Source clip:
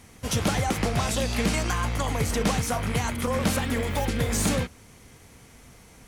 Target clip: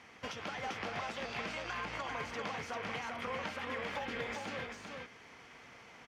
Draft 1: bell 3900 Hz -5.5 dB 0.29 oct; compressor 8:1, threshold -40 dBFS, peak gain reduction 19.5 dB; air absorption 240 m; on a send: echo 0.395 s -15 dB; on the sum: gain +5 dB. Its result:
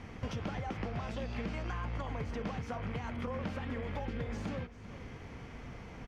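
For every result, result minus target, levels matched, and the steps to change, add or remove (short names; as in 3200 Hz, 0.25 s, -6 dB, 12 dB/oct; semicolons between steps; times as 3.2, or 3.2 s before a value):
echo-to-direct -11.5 dB; 1000 Hz band -3.0 dB
change: echo 0.395 s -3.5 dB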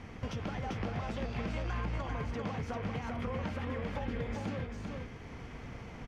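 1000 Hz band -3.0 dB
add first: HPF 1300 Hz 6 dB/oct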